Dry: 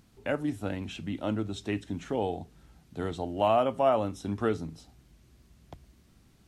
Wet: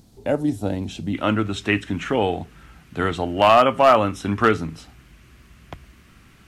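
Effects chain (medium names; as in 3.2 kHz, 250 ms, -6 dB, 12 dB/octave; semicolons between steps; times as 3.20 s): high-order bell 1.8 kHz -8.5 dB, from 1.13 s +9 dB; hard clipper -15 dBFS, distortion -20 dB; trim +9 dB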